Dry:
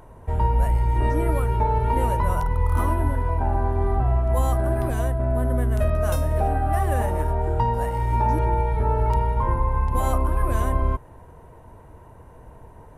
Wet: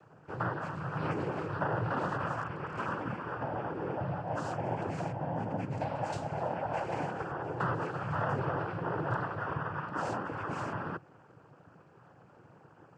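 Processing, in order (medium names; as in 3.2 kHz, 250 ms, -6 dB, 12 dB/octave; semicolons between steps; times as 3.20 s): noise-vocoded speech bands 8; trim -8.5 dB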